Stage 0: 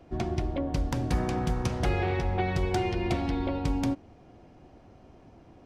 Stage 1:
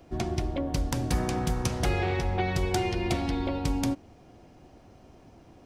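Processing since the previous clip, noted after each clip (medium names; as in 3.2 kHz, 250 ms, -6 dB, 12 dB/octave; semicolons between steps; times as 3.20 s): treble shelf 5.2 kHz +11.5 dB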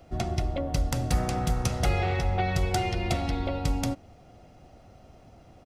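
comb 1.5 ms, depth 42%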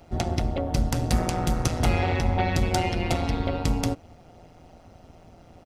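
AM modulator 170 Hz, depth 65%; trim +6 dB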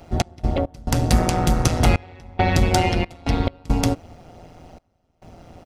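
trance gate "x.x.xxxxx..xx" 69 bpm -24 dB; trim +6 dB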